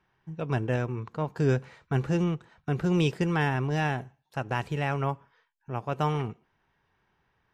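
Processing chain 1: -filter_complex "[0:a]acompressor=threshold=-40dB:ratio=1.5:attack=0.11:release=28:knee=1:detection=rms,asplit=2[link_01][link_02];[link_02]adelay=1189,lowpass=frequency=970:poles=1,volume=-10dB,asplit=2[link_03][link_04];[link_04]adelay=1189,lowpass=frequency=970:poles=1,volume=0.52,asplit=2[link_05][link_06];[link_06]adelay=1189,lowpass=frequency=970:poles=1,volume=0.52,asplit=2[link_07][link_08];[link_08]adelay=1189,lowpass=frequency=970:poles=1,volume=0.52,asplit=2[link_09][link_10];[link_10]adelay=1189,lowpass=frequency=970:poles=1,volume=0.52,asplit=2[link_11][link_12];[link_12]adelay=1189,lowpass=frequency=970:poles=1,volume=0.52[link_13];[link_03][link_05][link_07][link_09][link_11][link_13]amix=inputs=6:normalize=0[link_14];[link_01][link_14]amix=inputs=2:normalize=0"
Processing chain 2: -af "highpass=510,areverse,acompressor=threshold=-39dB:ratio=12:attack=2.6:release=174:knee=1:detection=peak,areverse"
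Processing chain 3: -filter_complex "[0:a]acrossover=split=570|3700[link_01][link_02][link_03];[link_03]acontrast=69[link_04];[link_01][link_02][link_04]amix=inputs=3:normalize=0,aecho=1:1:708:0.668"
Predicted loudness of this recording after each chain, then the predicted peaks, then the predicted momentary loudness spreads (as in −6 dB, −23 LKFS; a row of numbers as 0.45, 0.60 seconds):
−36.0, −47.0, −28.0 LKFS; −21.5, −29.5, −12.0 dBFS; 14, 8, 8 LU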